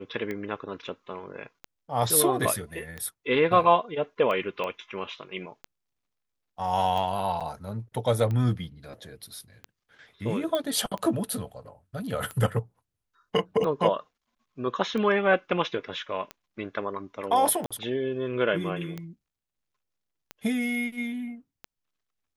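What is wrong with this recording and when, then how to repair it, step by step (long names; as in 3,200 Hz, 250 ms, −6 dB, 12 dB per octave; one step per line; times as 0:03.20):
scratch tick 45 rpm −21 dBFS
0:04.64: click −20 dBFS
0:07.40–0:07.41: drop-out 7 ms
0:10.55: click −16 dBFS
0:17.66–0:17.71: drop-out 46 ms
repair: click removal
repair the gap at 0:07.40, 7 ms
repair the gap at 0:17.66, 46 ms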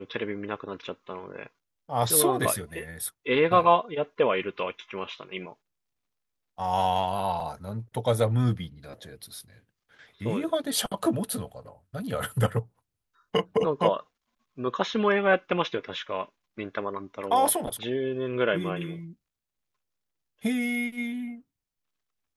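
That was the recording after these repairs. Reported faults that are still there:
none of them is left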